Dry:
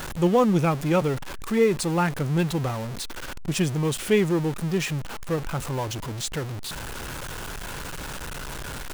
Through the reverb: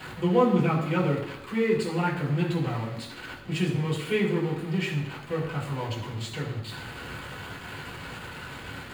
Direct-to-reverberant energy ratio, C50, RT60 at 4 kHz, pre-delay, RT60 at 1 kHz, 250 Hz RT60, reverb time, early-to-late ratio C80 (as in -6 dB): -4.0 dB, 6.0 dB, 0.90 s, 3 ms, 0.85 s, 0.85 s, 0.85 s, 8.0 dB